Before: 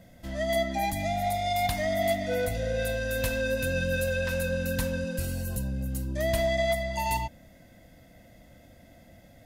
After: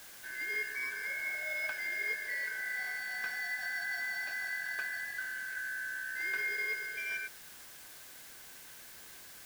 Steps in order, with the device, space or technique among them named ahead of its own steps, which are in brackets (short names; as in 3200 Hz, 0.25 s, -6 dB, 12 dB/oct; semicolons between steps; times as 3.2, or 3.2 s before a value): split-band scrambled radio (four-band scrambler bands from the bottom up 3142; BPF 320–2800 Hz; white noise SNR 13 dB); gain -8 dB